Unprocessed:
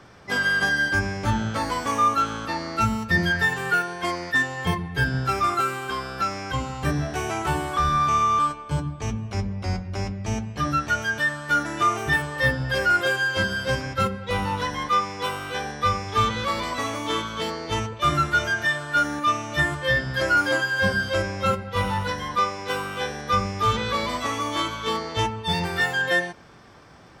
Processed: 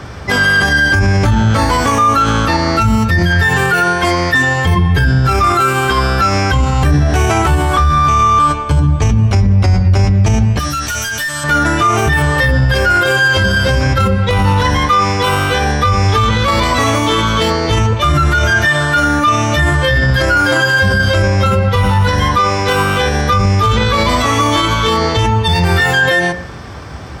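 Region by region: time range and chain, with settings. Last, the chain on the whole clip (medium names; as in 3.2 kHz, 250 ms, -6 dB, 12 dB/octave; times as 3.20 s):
10.59–11.44 s: pre-emphasis filter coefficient 0.9 + overload inside the chain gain 34 dB + level flattener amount 70%
whole clip: peaking EQ 72 Hz +13 dB 1.2 oct; de-hum 178.3 Hz, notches 40; loudness maximiser +20.5 dB; trim -3 dB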